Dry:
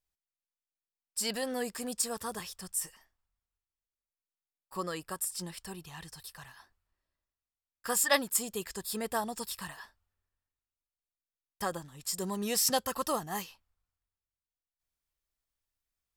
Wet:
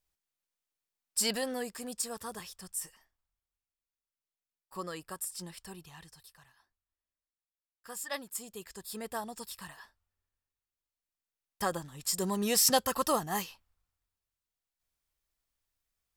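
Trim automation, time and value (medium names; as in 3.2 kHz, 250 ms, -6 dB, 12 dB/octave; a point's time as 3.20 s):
1.20 s +4 dB
1.69 s -3.5 dB
5.82 s -3.5 dB
6.54 s -13 dB
7.91 s -13 dB
8.99 s -5 dB
9.51 s -5 dB
11.94 s +3 dB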